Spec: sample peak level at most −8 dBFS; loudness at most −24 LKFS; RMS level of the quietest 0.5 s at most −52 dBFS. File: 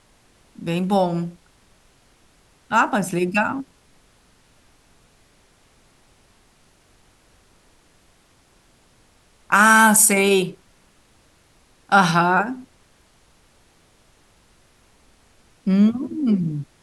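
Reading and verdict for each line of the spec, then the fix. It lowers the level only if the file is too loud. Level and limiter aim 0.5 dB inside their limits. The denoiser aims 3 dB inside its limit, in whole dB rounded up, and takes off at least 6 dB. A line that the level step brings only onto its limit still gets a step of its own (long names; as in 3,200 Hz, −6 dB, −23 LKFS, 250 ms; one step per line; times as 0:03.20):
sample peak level −3.5 dBFS: out of spec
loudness −18.0 LKFS: out of spec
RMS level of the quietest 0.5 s −57 dBFS: in spec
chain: level −6.5 dB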